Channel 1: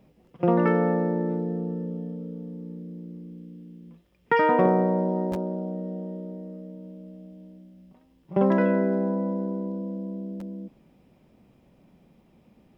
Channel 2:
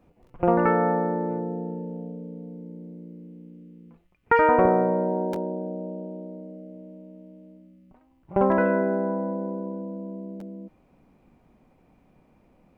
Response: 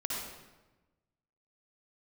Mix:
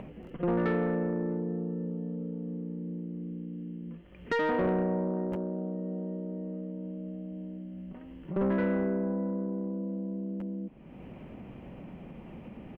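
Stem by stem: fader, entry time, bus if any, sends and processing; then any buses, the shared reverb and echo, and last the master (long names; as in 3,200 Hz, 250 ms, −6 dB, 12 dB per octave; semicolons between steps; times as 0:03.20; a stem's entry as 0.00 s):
−4.5 dB, 0.00 s, no send, Chebyshev low-pass filter 3,000 Hz, order 5
−18.0 dB, 0.5 ms, no send, no processing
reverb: not used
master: upward compression, threshold −29 dBFS; soft clipping −21.5 dBFS, distortion −15 dB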